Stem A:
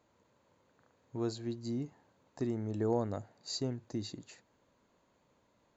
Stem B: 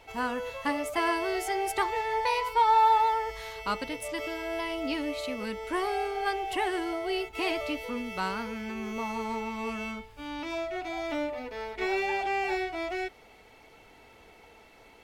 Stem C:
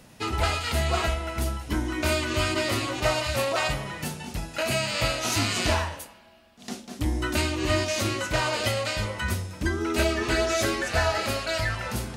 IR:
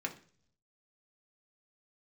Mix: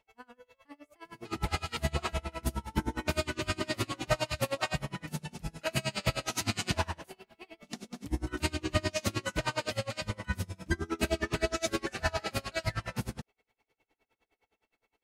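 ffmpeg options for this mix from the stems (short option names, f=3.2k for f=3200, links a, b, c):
-filter_complex "[0:a]volume=-9dB[a];[1:a]volume=-18dB,asplit=2[b][c];[c]volume=-9.5dB[d];[2:a]equalizer=f=170:t=o:w=0.65:g=8,adelay=1050,volume=-1.5dB[e];[3:a]atrim=start_sample=2205[f];[d][f]afir=irnorm=-1:irlink=0[g];[a][b][e][g]amix=inputs=4:normalize=0,aeval=exprs='val(0)*pow(10,-29*(0.5-0.5*cos(2*PI*9.7*n/s))/20)':c=same"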